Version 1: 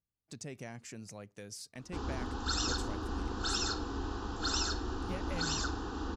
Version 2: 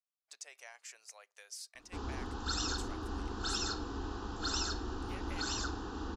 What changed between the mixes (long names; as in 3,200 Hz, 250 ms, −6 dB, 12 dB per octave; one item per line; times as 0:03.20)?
speech: add Bessel high-pass filter 1,000 Hz, order 6
reverb: off